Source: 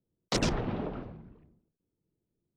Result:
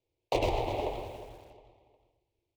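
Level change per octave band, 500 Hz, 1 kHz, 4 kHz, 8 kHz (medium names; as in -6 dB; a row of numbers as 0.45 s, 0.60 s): +4.5 dB, +5.5 dB, -4.5 dB, -11.0 dB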